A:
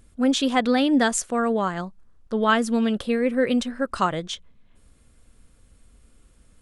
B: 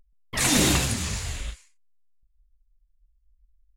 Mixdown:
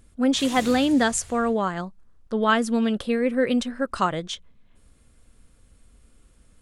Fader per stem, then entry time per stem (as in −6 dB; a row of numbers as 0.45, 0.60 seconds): −0.5, −15.5 decibels; 0.00, 0.00 seconds